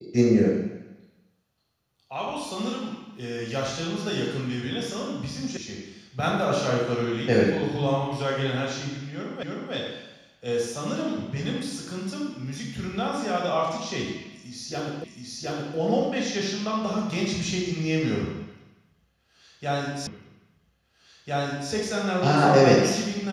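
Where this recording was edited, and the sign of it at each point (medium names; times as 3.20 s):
5.57 s: sound stops dead
9.43 s: repeat of the last 0.31 s
15.04 s: repeat of the last 0.72 s
20.07 s: repeat of the last 1.65 s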